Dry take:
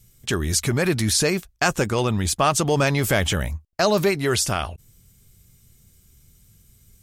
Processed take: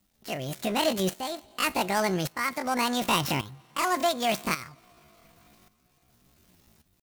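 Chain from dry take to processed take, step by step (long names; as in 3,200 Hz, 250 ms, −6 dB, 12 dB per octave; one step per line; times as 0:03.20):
gap after every zero crossing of 0.11 ms
low-shelf EQ 250 Hz −6.5 dB
coupled-rooms reverb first 0.29 s, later 4.5 s, from −19 dB, DRR 15.5 dB
pitch shifter +9.5 semitones
shaped tremolo saw up 0.88 Hz, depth 75%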